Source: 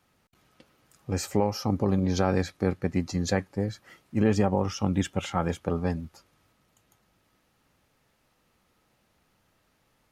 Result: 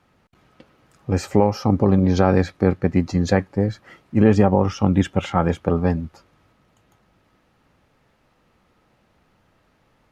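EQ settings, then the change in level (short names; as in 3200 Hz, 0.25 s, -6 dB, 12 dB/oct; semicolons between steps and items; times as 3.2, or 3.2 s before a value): LPF 2200 Hz 6 dB/oct; +8.5 dB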